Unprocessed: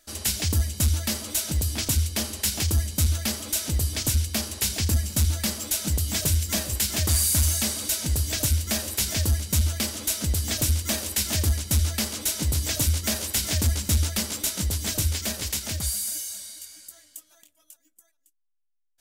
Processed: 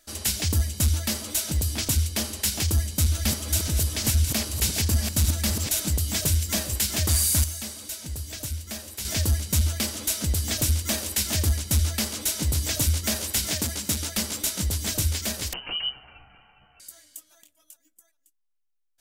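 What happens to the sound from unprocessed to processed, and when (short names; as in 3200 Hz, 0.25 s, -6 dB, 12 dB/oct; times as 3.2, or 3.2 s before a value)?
2.64–5.91 reverse delay 0.519 s, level -5 dB
7.44–9.05 gain -9 dB
13.51–14.17 HPF 150 Hz
15.53–16.8 inverted band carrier 3000 Hz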